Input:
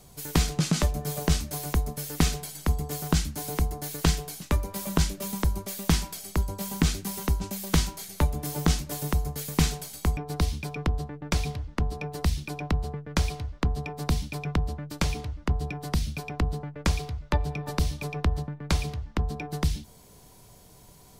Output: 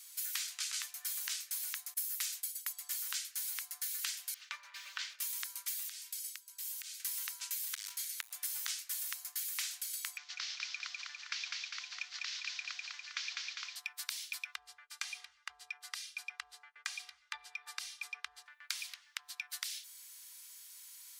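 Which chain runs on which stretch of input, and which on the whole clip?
0:01.94–0:02.73: downward expander −36 dBFS + high-shelf EQ 7,300 Hz +10 dB
0:04.34–0:05.19: lower of the sound and its delayed copy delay 3.3 ms + high-frequency loss of the air 200 metres
0:05.89–0:07.00: comb filter 3.2 ms, depth 36% + downward compressor 4 to 1, threshold −33 dBFS + guitar amp tone stack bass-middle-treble 5-5-5
0:07.70–0:08.31: downward compressor 3 to 1, threshold −25 dBFS + noise that follows the level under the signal 31 dB + saturating transformer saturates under 830 Hz
0:10.17–0:13.76: variable-slope delta modulation 32 kbit/s + high-pass filter 1,100 Hz 6 dB per octave + echo with a time of its own for lows and highs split 860 Hz, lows 151 ms, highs 201 ms, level −3.5 dB
0:14.55–0:18.46: low-pass filter 10,000 Hz + tilt shelving filter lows +8.5 dB, about 840 Hz + comb filter 2.5 ms, depth 62%
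whole clip: inverse Chebyshev high-pass filter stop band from 350 Hz, stop band 70 dB; high-shelf EQ 6,200 Hz +5 dB; downward compressor, threshold −37 dBFS; level +1 dB

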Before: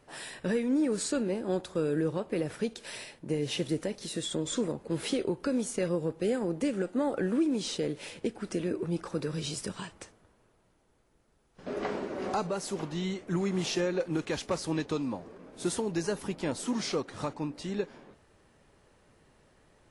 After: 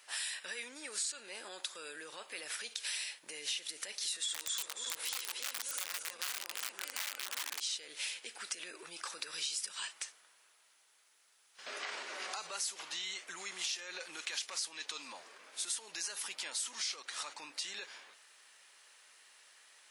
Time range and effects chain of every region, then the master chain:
0:04.12–0:07.60: feedback delay that plays each chunk backwards 147 ms, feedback 68%, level −4 dB + parametric band 1,000 Hz +6 dB 1.6 octaves + wrap-around overflow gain 20 dB
whole clip: brickwall limiter −28.5 dBFS; Bessel high-pass filter 2,700 Hz, order 2; downward compressor 3 to 1, threshold −50 dBFS; level +12.5 dB

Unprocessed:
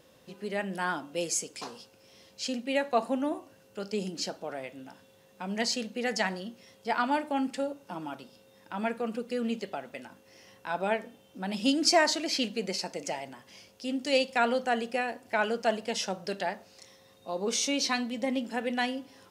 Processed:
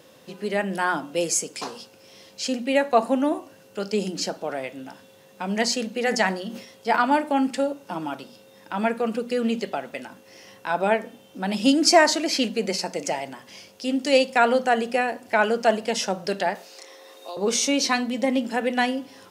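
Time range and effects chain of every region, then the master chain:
0:05.95–0:06.96: mains-hum notches 50/100/150/200/250 Hz + level that may fall only so fast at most 93 dB per second
0:16.55–0:17.37: Butterworth high-pass 300 Hz + multiband upward and downward compressor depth 70%
whole clip: high-pass filter 110 Hz; mains-hum notches 60/120/180/240 Hz; dynamic equaliser 3,700 Hz, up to −4 dB, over −42 dBFS, Q 0.98; level +8 dB

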